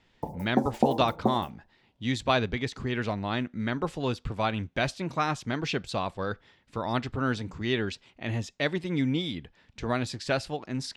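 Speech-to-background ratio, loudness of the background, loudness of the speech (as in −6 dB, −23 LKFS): 0.0 dB, −30.5 LKFS, −30.5 LKFS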